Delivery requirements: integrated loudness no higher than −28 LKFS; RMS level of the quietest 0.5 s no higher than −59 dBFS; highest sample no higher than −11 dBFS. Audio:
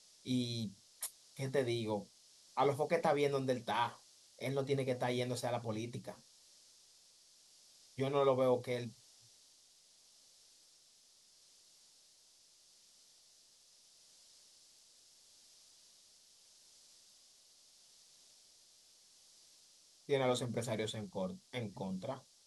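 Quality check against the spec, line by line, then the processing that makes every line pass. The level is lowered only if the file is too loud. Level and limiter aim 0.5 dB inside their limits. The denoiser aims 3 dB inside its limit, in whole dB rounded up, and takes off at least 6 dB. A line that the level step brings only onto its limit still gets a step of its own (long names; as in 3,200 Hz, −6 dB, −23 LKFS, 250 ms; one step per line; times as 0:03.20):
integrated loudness −37.5 LKFS: in spec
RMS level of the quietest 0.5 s −66 dBFS: in spec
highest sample −19.0 dBFS: in spec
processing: no processing needed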